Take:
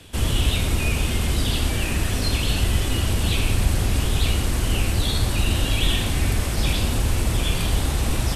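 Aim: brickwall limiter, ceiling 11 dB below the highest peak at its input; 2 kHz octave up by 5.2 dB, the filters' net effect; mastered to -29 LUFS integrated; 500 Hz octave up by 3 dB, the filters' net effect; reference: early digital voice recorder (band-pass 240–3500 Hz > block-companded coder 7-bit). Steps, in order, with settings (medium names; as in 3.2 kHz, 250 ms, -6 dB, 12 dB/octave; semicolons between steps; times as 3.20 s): peaking EQ 500 Hz +4 dB; peaking EQ 2 kHz +7.5 dB; peak limiter -16.5 dBFS; band-pass 240–3500 Hz; block-companded coder 7-bit; trim +1 dB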